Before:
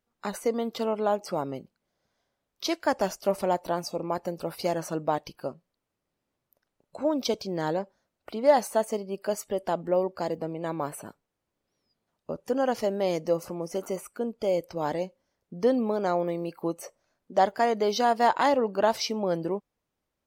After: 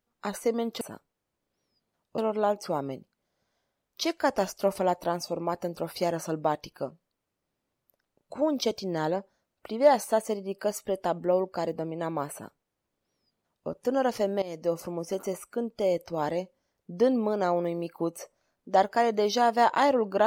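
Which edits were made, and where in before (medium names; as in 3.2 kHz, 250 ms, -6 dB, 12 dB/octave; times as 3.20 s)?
10.95–12.32 s: copy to 0.81 s
13.05–13.42 s: fade in, from -16.5 dB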